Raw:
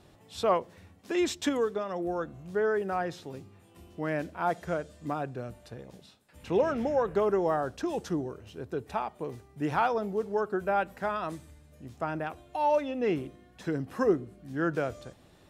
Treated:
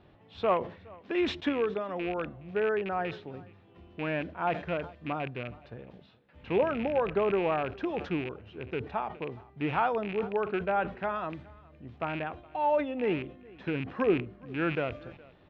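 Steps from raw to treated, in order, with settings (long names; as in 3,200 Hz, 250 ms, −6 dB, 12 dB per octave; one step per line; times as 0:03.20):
loose part that buzzes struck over −37 dBFS, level −27 dBFS
low-pass filter 3,300 Hz 24 dB per octave
single-tap delay 417 ms −23.5 dB
level that may fall only so fast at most 130 dB per second
level −1 dB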